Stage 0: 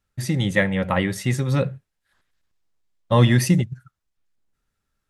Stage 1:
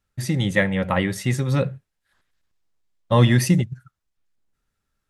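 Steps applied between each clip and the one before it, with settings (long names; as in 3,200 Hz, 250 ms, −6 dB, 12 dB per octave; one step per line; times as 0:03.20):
no processing that can be heard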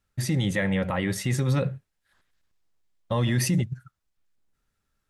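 brickwall limiter −15.5 dBFS, peak gain reduction 11 dB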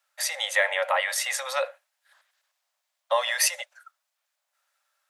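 Butterworth high-pass 550 Hz 96 dB per octave
level +7 dB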